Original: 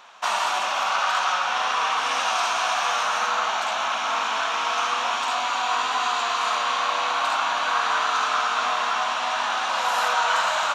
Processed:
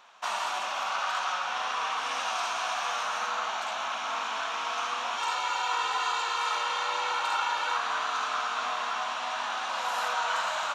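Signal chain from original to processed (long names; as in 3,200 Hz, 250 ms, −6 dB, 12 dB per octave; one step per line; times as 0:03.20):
0:05.18–0:07.77: comb filter 2.2 ms, depth 90%
level −7.5 dB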